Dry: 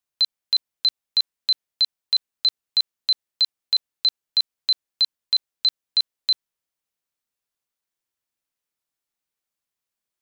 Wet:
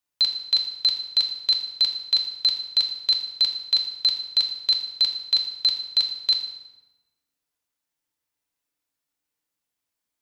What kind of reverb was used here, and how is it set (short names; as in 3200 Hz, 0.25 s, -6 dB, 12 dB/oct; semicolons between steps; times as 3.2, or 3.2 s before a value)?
FDN reverb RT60 1.1 s, low-frequency decay 1.25×, high-frequency decay 0.75×, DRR 1.5 dB